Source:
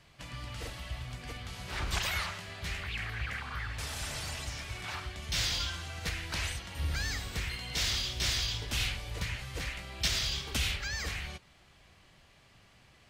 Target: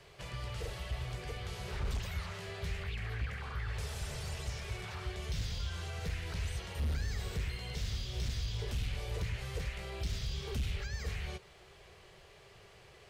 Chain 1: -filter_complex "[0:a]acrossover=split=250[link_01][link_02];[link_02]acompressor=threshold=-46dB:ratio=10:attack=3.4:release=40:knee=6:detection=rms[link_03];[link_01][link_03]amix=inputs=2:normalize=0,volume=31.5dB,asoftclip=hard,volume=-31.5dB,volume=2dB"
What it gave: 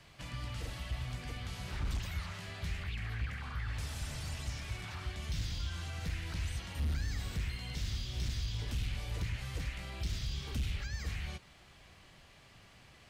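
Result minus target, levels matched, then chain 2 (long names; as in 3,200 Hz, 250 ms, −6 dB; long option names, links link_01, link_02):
500 Hz band −7.0 dB
-filter_complex "[0:a]acrossover=split=250[link_01][link_02];[link_02]acompressor=threshold=-46dB:ratio=10:attack=3.4:release=40:knee=6:detection=rms,highpass=frequency=400:width_type=q:width=4.5[link_03];[link_01][link_03]amix=inputs=2:normalize=0,volume=31.5dB,asoftclip=hard,volume=-31.5dB,volume=2dB"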